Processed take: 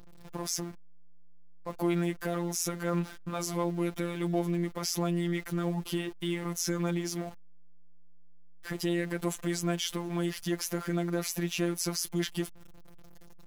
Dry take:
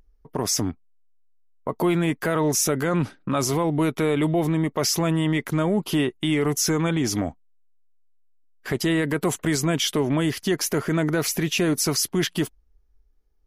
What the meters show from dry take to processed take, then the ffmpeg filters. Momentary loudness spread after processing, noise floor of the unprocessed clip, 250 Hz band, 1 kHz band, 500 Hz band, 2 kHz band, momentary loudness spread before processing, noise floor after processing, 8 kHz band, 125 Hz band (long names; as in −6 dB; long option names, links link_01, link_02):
7 LU, −60 dBFS, −8.5 dB, −9.5 dB, −9.5 dB, −10.0 dB, 5 LU, −47 dBFS, −9.5 dB, −8.5 dB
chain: -af "aeval=exprs='val(0)+0.5*0.0237*sgn(val(0))':channel_layout=same,afftfilt=real='hypot(re,im)*cos(PI*b)':imag='0':win_size=1024:overlap=0.75,volume=-7.5dB"